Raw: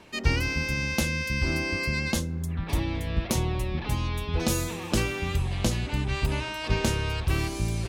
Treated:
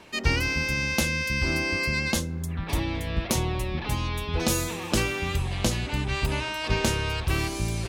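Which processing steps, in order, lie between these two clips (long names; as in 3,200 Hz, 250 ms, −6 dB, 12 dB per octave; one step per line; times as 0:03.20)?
low-shelf EQ 350 Hz −4 dB
level +3 dB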